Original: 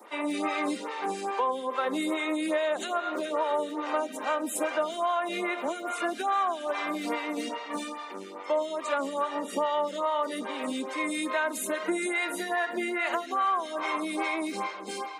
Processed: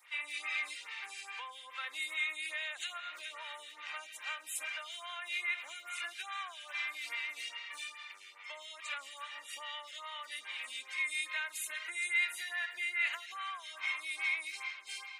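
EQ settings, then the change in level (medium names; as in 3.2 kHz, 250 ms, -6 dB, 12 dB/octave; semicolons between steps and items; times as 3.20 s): resonant high-pass 2.3 kHz, resonance Q 2.3; -6.0 dB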